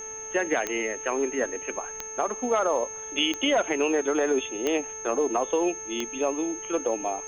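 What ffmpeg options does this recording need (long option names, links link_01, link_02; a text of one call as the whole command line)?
ffmpeg -i in.wav -af "adeclick=threshold=4,bandreject=frequency=438.6:width_type=h:width=4,bandreject=frequency=877.2:width_type=h:width=4,bandreject=frequency=1315.8:width_type=h:width=4,bandreject=frequency=1754.4:width_type=h:width=4,bandreject=frequency=2193:width_type=h:width=4,bandreject=frequency=2631.6:width_type=h:width=4,bandreject=frequency=6400:width=30,agate=range=-21dB:threshold=-30dB" out.wav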